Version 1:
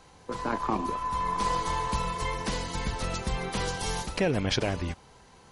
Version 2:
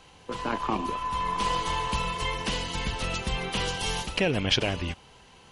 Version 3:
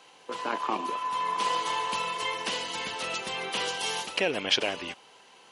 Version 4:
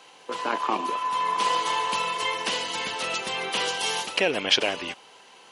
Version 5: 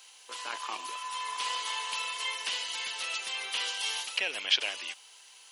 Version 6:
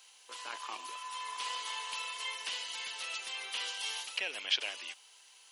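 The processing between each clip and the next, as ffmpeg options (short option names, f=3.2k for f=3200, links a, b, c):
-af "equalizer=f=2.9k:t=o:w=0.54:g=10.5"
-af "highpass=360"
-af "lowshelf=f=180:g=-3.5,volume=4dB"
-filter_complex "[0:a]acrossover=split=4100[a][b];[b]acompressor=threshold=-45dB:ratio=4:attack=1:release=60[c];[a][c]amix=inputs=2:normalize=0,aderivative,volume=5dB"
-af "highpass=150,volume=-5dB"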